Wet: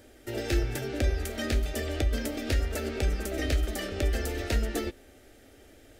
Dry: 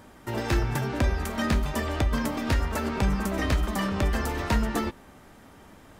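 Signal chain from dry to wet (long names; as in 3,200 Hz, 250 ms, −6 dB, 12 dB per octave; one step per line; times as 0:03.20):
phaser with its sweep stopped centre 420 Hz, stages 4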